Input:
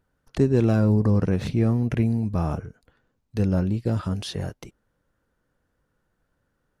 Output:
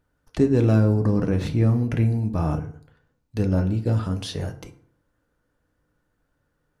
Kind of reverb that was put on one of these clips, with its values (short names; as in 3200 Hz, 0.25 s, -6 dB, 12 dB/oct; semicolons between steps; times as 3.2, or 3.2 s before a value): FDN reverb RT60 0.58 s, low-frequency decay 1.1×, high-frequency decay 0.6×, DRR 7 dB